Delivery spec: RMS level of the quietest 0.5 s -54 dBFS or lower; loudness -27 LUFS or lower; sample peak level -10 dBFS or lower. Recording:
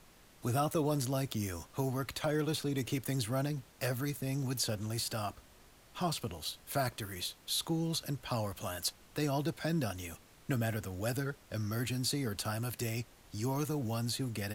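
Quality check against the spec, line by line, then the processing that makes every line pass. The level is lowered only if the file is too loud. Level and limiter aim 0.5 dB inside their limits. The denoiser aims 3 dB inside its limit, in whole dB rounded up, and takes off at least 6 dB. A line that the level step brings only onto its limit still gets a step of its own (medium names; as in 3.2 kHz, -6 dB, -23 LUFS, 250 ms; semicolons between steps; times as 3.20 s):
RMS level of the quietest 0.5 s -60 dBFS: pass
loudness -36.0 LUFS: pass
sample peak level -21.0 dBFS: pass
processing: none needed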